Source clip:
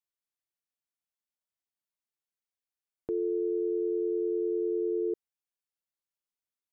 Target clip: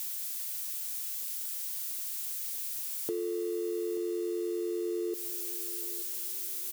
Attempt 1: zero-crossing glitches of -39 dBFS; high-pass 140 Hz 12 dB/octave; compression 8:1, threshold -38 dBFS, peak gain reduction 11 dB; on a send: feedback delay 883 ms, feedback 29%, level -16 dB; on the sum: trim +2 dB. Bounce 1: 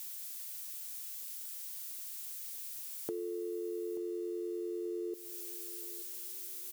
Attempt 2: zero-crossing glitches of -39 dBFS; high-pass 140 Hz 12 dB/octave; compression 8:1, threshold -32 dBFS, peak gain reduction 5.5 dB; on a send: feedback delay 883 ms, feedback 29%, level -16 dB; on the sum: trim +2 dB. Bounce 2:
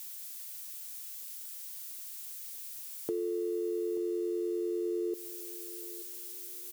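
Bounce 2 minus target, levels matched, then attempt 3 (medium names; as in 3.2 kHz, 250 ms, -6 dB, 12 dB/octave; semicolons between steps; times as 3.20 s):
zero-crossing glitches: distortion -7 dB
zero-crossing glitches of -31.5 dBFS; high-pass 140 Hz 12 dB/octave; compression 8:1, threshold -32 dBFS, peak gain reduction 5.5 dB; on a send: feedback delay 883 ms, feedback 29%, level -16 dB; on the sum: trim +2 dB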